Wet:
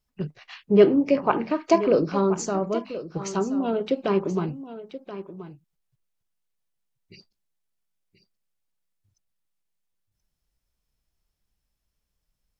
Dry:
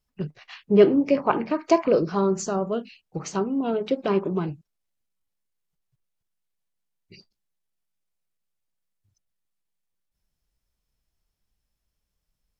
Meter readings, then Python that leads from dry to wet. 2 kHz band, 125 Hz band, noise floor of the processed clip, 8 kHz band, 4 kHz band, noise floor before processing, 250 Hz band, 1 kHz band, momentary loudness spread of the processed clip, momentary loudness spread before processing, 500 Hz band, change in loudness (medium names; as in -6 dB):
0.0 dB, 0.0 dB, -80 dBFS, no reading, 0.0 dB, -81 dBFS, 0.0 dB, 0.0 dB, 20 LU, 17 LU, 0.0 dB, 0.0 dB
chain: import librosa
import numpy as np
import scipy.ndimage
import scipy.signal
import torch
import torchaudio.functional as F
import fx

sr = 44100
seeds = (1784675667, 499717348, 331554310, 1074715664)

y = x + 10.0 ** (-13.5 / 20.0) * np.pad(x, (int(1029 * sr / 1000.0), 0))[:len(x)]